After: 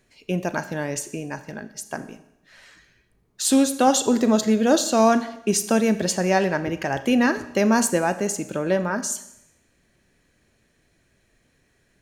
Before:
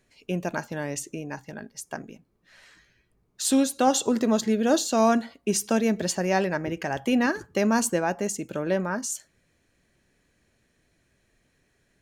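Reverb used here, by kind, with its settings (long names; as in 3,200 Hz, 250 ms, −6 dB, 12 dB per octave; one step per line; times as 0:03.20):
four-comb reverb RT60 0.82 s, combs from 29 ms, DRR 12 dB
level +3.5 dB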